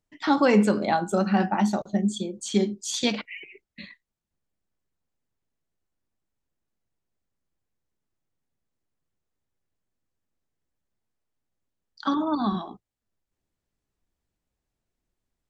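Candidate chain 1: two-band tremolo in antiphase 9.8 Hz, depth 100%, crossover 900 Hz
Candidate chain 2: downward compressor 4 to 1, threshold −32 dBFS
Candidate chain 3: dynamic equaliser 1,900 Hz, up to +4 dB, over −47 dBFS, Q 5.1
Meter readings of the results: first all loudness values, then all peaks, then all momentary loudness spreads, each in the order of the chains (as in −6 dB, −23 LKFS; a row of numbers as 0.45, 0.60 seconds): −29.0, −35.5, −24.5 LKFS; −12.0, −20.0, −8.0 dBFS; 16, 12, 14 LU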